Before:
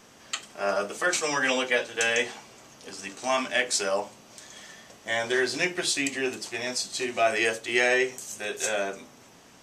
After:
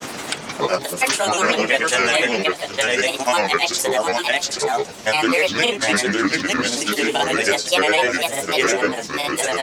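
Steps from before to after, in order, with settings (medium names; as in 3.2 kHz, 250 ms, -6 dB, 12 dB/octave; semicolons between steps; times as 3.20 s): delay 794 ms -3.5 dB; granulator, pitch spread up and down by 7 st; three bands compressed up and down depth 70%; trim +8 dB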